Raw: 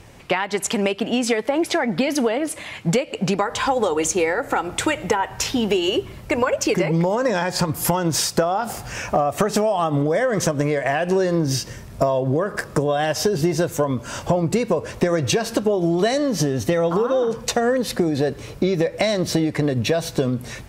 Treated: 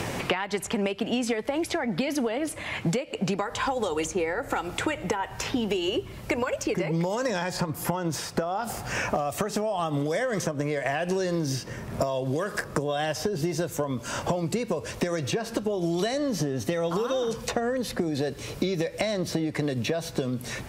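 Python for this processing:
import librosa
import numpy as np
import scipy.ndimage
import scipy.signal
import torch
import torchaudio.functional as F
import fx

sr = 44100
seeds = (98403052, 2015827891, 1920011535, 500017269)

y = fx.band_squash(x, sr, depth_pct=100)
y = F.gain(torch.from_numpy(y), -8.0).numpy()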